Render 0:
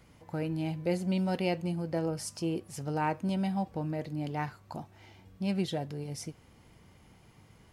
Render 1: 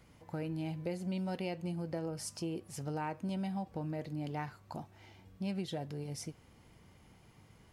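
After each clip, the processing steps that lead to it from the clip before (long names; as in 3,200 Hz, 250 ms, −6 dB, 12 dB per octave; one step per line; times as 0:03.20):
downward compressor 4 to 1, threshold −32 dBFS, peak gain reduction 7 dB
level −2.5 dB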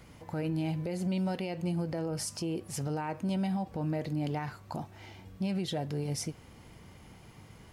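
brickwall limiter −33.5 dBFS, peak gain reduction 9 dB
level +8 dB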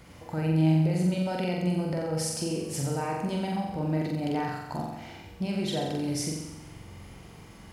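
flutter between parallel walls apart 7.6 metres, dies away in 0.98 s
level +2 dB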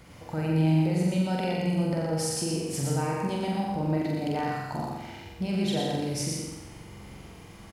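single-tap delay 118 ms −3.5 dB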